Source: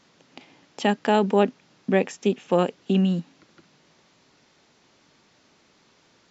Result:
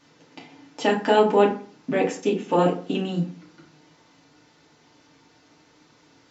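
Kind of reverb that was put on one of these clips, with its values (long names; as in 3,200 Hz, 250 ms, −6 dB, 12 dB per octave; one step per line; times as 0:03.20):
feedback delay network reverb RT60 0.43 s, low-frequency decay 1.1×, high-frequency decay 0.6×, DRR −4.5 dB
level −3 dB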